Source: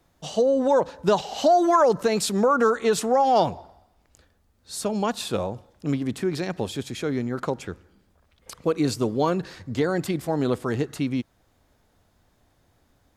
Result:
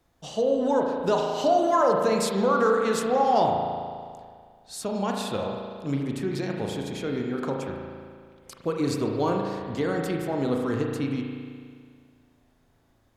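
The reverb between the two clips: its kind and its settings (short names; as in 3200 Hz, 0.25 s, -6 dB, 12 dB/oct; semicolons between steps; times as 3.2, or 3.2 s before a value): spring tank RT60 2 s, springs 36 ms, chirp 40 ms, DRR 0.5 dB; gain -4.5 dB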